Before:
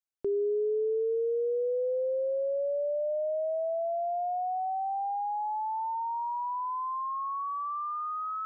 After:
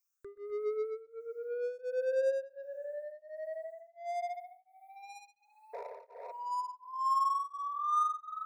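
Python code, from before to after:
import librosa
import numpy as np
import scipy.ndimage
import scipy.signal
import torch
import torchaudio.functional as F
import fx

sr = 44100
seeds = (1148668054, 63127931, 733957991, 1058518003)

p1 = fx.phaser_stages(x, sr, stages=8, low_hz=210.0, high_hz=1100.0, hz=0.38, feedback_pct=50)
p2 = p1 + fx.echo_feedback(p1, sr, ms=128, feedback_pct=30, wet_db=-5.5, dry=0)
p3 = fx.spec_paint(p2, sr, seeds[0], shape='noise', start_s=5.73, length_s=0.59, low_hz=400.0, high_hz=1000.0, level_db=-39.0)
p4 = 10.0 ** (-38.5 / 20.0) * np.tanh(p3 / 10.0 ** (-38.5 / 20.0))
p5 = p3 + (p4 * 10.0 ** (-5.0 / 20.0))
p6 = fx.tilt_shelf(p5, sr, db=-9.5, hz=970.0)
p7 = fx.fixed_phaser(p6, sr, hz=830.0, stages=6)
p8 = fx.rev_spring(p7, sr, rt60_s=2.2, pass_ms=(39,), chirp_ms=50, drr_db=19.5)
p9 = p8 * np.abs(np.cos(np.pi * 1.4 * np.arange(len(p8)) / sr))
y = p9 * 10.0 ** (2.5 / 20.0)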